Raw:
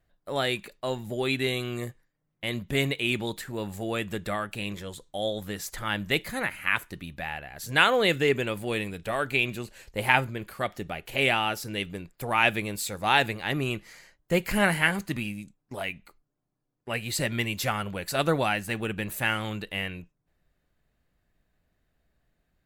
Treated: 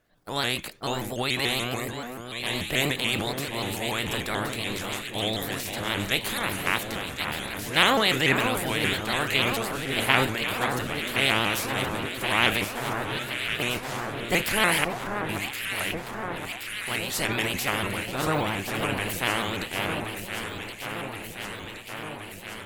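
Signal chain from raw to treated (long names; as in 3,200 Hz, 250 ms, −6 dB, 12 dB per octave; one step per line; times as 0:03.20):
ceiling on every frequency bin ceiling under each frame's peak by 16 dB
transient designer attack 0 dB, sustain +8 dB
0:12.64–0:13.60: tuned comb filter 130 Hz, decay 0.29 s, harmonics odd, mix 90%
0:14.84–0:15.29: formant resonators in series a
0:18.01–0:18.74: de-essing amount 95%
delay that swaps between a low-pass and a high-pass 536 ms, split 1,600 Hz, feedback 85%, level −6 dB
pitch modulation by a square or saw wave saw up 6.9 Hz, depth 160 cents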